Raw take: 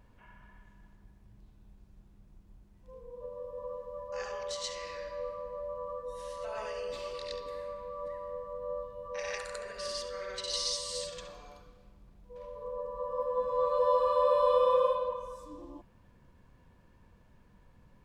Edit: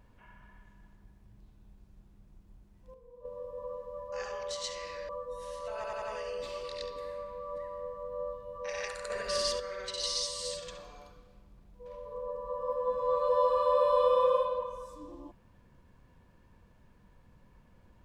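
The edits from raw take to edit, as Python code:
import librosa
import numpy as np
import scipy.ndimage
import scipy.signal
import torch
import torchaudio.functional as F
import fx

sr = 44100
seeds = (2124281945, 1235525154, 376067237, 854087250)

y = fx.edit(x, sr, fx.clip_gain(start_s=2.94, length_s=0.31, db=-7.5),
    fx.cut(start_s=5.09, length_s=0.77),
    fx.stutter(start_s=6.52, slice_s=0.09, count=4),
    fx.clip_gain(start_s=9.6, length_s=0.5, db=6.5), tone=tone)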